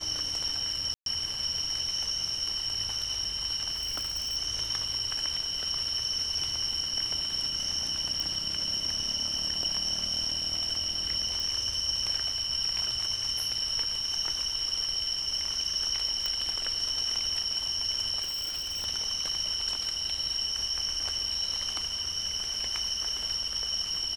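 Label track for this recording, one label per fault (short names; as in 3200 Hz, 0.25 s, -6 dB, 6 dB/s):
0.940000	1.060000	gap 0.122 s
3.740000	4.370000	clipped -28.5 dBFS
8.200000	8.200000	pop
11.400000	11.400000	pop
16.260000	16.260000	pop -16 dBFS
18.220000	18.860000	clipped -30 dBFS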